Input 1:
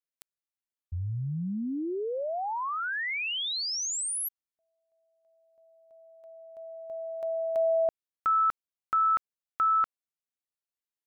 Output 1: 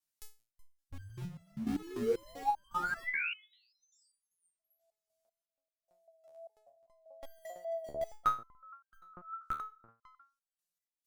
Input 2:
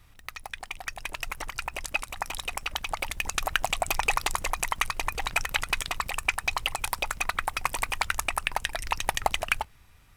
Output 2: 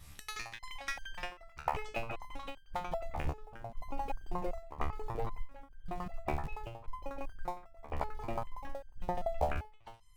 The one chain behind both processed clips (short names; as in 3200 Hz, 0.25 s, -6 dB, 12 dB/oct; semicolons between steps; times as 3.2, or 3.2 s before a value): reverse delay 0.203 s, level -8 dB; tone controls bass +5 dB, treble +9 dB; treble ducked by the level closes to 540 Hz, closed at -24 dBFS; dynamic EQ 400 Hz, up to +4 dB, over -45 dBFS, Q 0.8; in parallel at -9 dB: Schmitt trigger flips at -28 dBFS; on the sum: wow and flutter 24 cents; step gate "xx.xxx..xx" 72 bpm -12 dB; harmonic-percussive split percussive +7 dB; stepped resonator 5.1 Hz 74–1600 Hz; gain +4.5 dB